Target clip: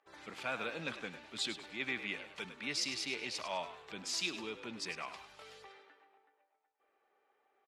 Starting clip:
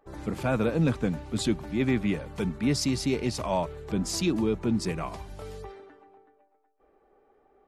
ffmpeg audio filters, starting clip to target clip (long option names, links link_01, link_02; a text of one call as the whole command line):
ffmpeg -i in.wav -filter_complex "[0:a]bandpass=frequency=2900:width_type=q:width=1:csg=0,asplit=5[link_01][link_02][link_03][link_04][link_05];[link_02]adelay=102,afreqshift=59,volume=-11.5dB[link_06];[link_03]adelay=204,afreqshift=118,volume=-20.6dB[link_07];[link_04]adelay=306,afreqshift=177,volume=-29.7dB[link_08];[link_05]adelay=408,afreqshift=236,volume=-38.9dB[link_09];[link_01][link_06][link_07][link_08][link_09]amix=inputs=5:normalize=0" out.wav